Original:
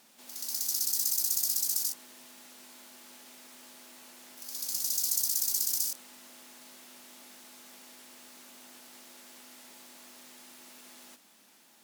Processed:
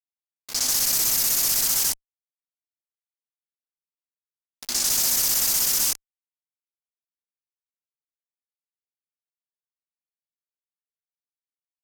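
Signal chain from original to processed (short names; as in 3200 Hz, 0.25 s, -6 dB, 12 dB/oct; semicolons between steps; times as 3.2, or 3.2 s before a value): low-pass opened by the level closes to 560 Hz, open at -27 dBFS; fuzz box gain 50 dB, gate -43 dBFS; gain -6 dB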